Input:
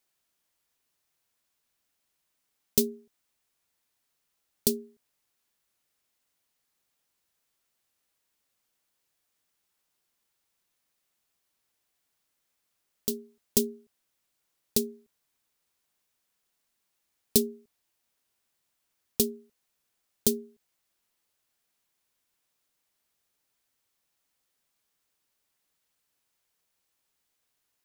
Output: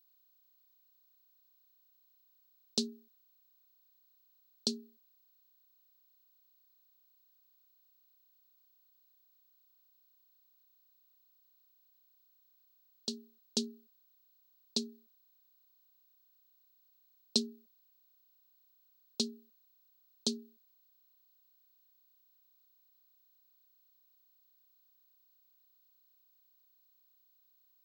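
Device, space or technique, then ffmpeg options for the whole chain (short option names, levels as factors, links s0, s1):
old television with a line whistle: -af "highpass=f=210:w=0.5412,highpass=f=210:w=1.3066,equalizer=f=420:t=q:w=4:g=-9,equalizer=f=2100:t=q:w=4:g=-9,equalizer=f=4200:t=q:w=4:g=10,lowpass=f=6500:w=0.5412,lowpass=f=6500:w=1.3066,aeval=exprs='val(0)+0.000794*sin(2*PI*15734*n/s)':c=same,volume=0.596"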